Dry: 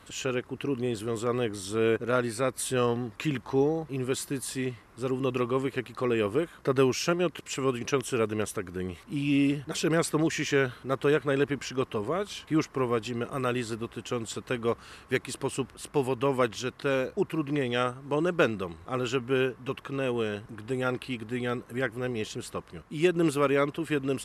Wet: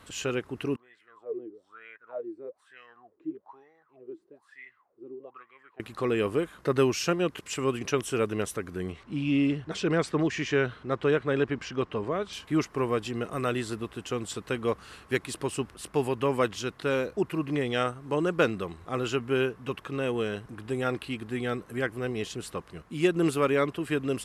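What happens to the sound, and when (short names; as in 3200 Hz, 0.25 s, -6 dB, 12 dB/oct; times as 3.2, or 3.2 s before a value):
0.76–5.8 wah 1.1 Hz 320–2100 Hz, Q 13
8.92–12.33 air absorption 95 m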